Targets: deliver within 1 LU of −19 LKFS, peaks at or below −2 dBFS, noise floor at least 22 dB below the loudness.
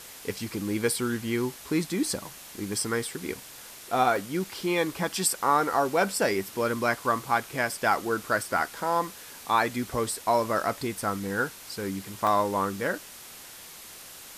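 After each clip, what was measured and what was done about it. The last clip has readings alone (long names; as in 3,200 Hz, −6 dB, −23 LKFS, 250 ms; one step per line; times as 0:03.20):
number of dropouts 5; longest dropout 1.1 ms; background noise floor −46 dBFS; target noise floor −50 dBFS; integrated loudness −28.0 LKFS; sample peak −10.0 dBFS; target loudness −19.0 LKFS
→ repair the gap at 0:02.85/0:04.16/0:04.78/0:07.27/0:12.27, 1.1 ms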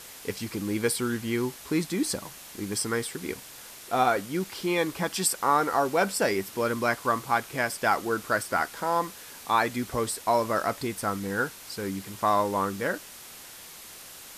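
number of dropouts 0; background noise floor −46 dBFS; target noise floor −50 dBFS
→ noise reduction from a noise print 6 dB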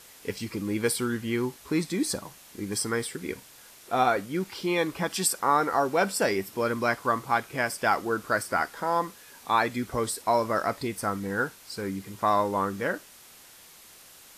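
background noise floor −52 dBFS; integrated loudness −28.0 LKFS; sample peak −10.0 dBFS; target loudness −19.0 LKFS
→ level +9 dB
brickwall limiter −2 dBFS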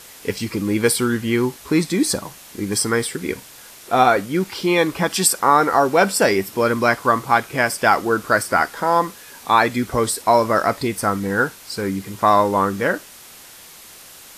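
integrated loudness −19.0 LKFS; sample peak −2.0 dBFS; background noise floor −43 dBFS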